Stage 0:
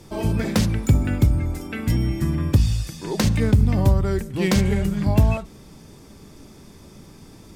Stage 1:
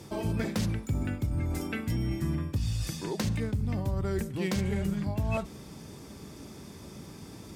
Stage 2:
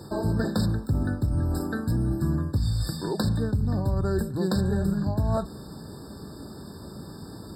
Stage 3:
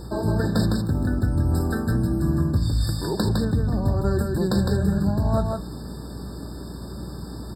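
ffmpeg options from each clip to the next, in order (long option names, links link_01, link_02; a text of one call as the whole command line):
ffmpeg -i in.wav -af "areverse,acompressor=threshold=-26dB:ratio=6,areverse,highpass=61" out.wav
ffmpeg -i in.wav -af "afftfilt=real='re*eq(mod(floor(b*sr/1024/1800),2),0)':imag='im*eq(mod(floor(b*sr/1024/1800),2),0)':win_size=1024:overlap=0.75,volume=5dB" out.wav
ffmpeg -i in.wav -filter_complex "[0:a]asplit=2[link_01][link_02];[link_02]aecho=0:1:158:0.668[link_03];[link_01][link_03]amix=inputs=2:normalize=0,aeval=exprs='val(0)+0.0126*(sin(2*PI*60*n/s)+sin(2*PI*2*60*n/s)/2+sin(2*PI*3*60*n/s)/3+sin(2*PI*4*60*n/s)/4+sin(2*PI*5*60*n/s)/5)':channel_layout=same,volume=2dB" out.wav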